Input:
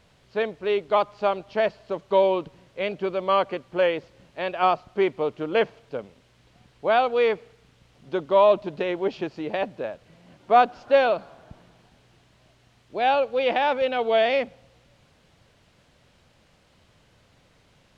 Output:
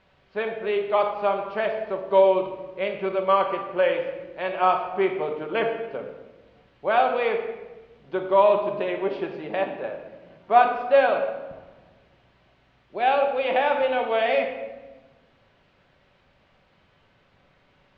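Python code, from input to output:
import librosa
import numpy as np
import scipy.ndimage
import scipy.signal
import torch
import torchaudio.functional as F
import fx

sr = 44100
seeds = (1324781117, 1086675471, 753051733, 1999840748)

y = scipy.signal.sosfilt(scipy.signal.butter(2, 2800.0, 'lowpass', fs=sr, output='sos'), x)
y = fx.low_shelf(y, sr, hz=370.0, db=-7.5)
y = fx.room_shoebox(y, sr, seeds[0], volume_m3=740.0, walls='mixed', distance_m=1.1)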